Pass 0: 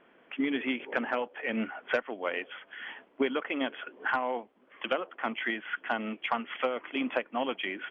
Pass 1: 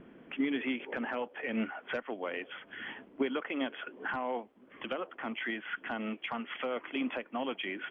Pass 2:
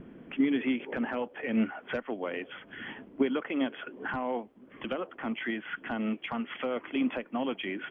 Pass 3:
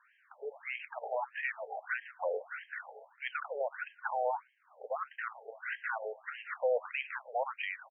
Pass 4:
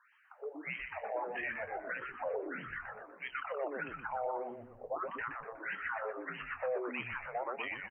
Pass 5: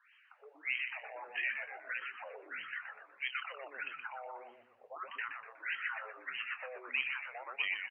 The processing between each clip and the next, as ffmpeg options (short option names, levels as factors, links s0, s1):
-filter_complex "[0:a]acrossover=split=310[s0][s1];[s0]acompressor=mode=upward:threshold=0.01:ratio=2.5[s2];[s1]alimiter=level_in=1.19:limit=0.0631:level=0:latency=1:release=75,volume=0.841[s3];[s2][s3]amix=inputs=2:normalize=0,volume=0.891"
-af "lowshelf=f=310:g=10"
-filter_complex "[0:a]asplit=2[s0][s1];[s1]adelay=118,lowpass=f=2700:p=1,volume=0.141,asplit=2[s2][s3];[s3]adelay=118,lowpass=f=2700:p=1,volume=0.33,asplit=2[s4][s5];[s5]adelay=118,lowpass=f=2700:p=1,volume=0.33[s6];[s0][s2][s4][s6]amix=inputs=4:normalize=0,dynaudnorm=f=160:g=11:m=1.68,afftfilt=real='re*between(b*sr/1024,580*pow(2300/580,0.5+0.5*sin(2*PI*1.6*pts/sr))/1.41,580*pow(2300/580,0.5+0.5*sin(2*PI*1.6*pts/sr))*1.41)':imag='im*between(b*sr/1024,580*pow(2300/580,0.5+0.5*sin(2*PI*1.6*pts/sr))/1.41,580*pow(2300/580,0.5+0.5*sin(2*PI*1.6*pts/sr))*1.41)':win_size=1024:overlap=0.75"
-filter_complex "[0:a]alimiter=level_in=1.58:limit=0.0631:level=0:latency=1:release=79,volume=0.631,asplit=2[s0][s1];[s1]adelay=24,volume=0.224[s2];[s0][s2]amix=inputs=2:normalize=0,asplit=2[s3][s4];[s4]asplit=6[s5][s6][s7][s8][s9][s10];[s5]adelay=122,afreqshift=-130,volume=0.562[s11];[s6]adelay=244,afreqshift=-260,volume=0.269[s12];[s7]adelay=366,afreqshift=-390,volume=0.129[s13];[s8]adelay=488,afreqshift=-520,volume=0.0624[s14];[s9]adelay=610,afreqshift=-650,volume=0.0299[s15];[s10]adelay=732,afreqshift=-780,volume=0.0143[s16];[s11][s12][s13][s14][s15][s16]amix=inputs=6:normalize=0[s17];[s3][s17]amix=inputs=2:normalize=0,volume=0.891"
-af "bandpass=f=2900:t=q:w=2.4:csg=0,volume=2.99"